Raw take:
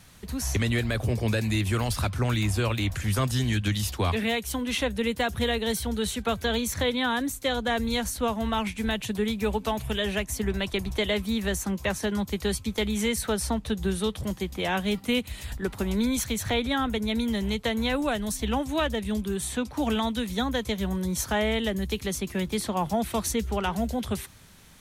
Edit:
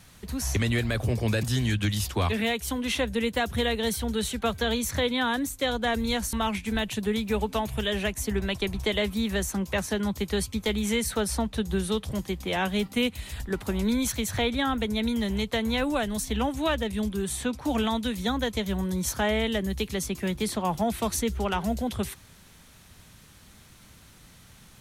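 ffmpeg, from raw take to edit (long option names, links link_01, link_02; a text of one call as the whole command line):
ffmpeg -i in.wav -filter_complex "[0:a]asplit=3[link_01][link_02][link_03];[link_01]atrim=end=1.432[link_04];[link_02]atrim=start=3.258:end=8.162[link_05];[link_03]atrim=start=8.448[link_06];[link_04][link_05]acrossfade=duration=0.004:curve1=hsin:curve2=hsin[link_07];[link_07][link_06]acrossfade=duration=0.004:curve1=hsin:curve2=hsin" out.wav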